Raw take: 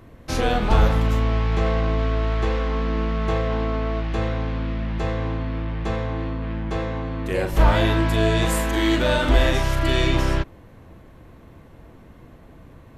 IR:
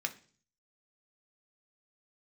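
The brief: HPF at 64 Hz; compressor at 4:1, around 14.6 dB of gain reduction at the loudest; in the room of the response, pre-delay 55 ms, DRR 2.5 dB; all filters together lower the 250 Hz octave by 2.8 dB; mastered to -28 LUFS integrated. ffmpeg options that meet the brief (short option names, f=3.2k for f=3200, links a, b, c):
-filter_complex "[0:a]highpass=64,equalizer=f=250:t=o:g=-4,acompressor=threshold=-33dB:ratio=4,asplit=2[a][b];[1:a]atrim=start_sample=2205,adelay=55[c];[b][c]afir=irnorm=-1:irlink=0,volume=-5.5dB[d];[a][d]amix=inputs=2:normalize=0,volume=6.5dB"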